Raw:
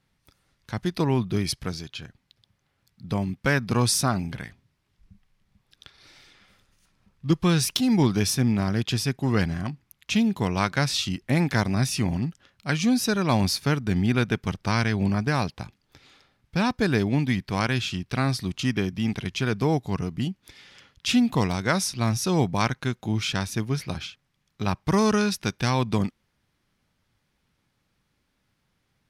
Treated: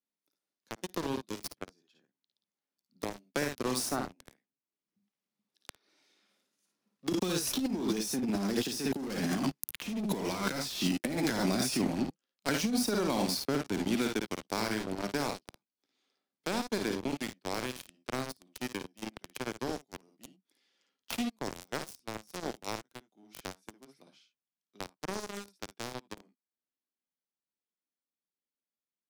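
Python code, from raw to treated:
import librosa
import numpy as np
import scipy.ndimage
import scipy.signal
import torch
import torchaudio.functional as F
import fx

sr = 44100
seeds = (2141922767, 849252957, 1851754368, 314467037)

y = fx.doppler_pass(x, sr, speed_mps=10, closest_m=4.0, pass_at_s=9.64)
y = fx.leveller(y, sr, passes=1)
y = scipy.signal.sosfilt(scipy.signal.butter(4, 240.0, 'highpass', fs=sr, output='sos'), y)
y = fx.peak_eq(y, sr, hz=4700.0, db=2.5, octaves=2.1)
y = fx.room_early_taps(y, sr, ms=(55, 70), db=(-5.5, -11.5))
y = fx.leveller(y, sr, passes=5)
y = fx.over_compress(y, sr, threshold_db=-21.0, ratio=-0.5)
y = fx.peak_eq(y, sr, hz=1900.0, db=-8.5, octaves=2.9)
y = fx.band_squash(y, sr, depth_pct=70)
y = F.gain(torch.from_numpy(y), -5.0).numpy()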